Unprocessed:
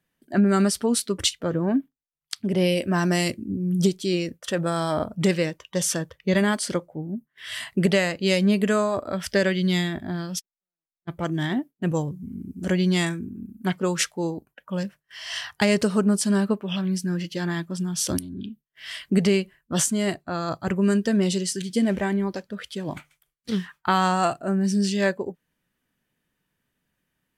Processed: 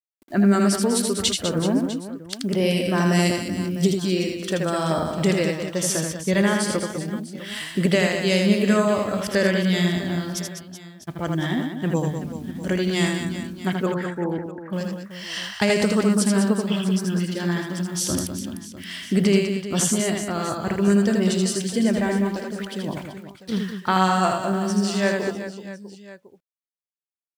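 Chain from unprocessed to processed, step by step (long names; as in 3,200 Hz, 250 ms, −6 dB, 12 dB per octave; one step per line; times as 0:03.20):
bit reduction 9 bits
0:13.86–0:14.73: Butterworth low-pass 1,800 Hz 48 dB per octave
on a send: reverse bouncing-ball delay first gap 80 ms, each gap 1.5×, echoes 5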